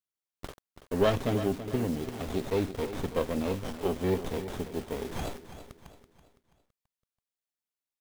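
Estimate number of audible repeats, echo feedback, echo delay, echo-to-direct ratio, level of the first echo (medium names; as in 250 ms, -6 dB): 3, 41%, 331 ms, -11.0 dB, -12.0 dB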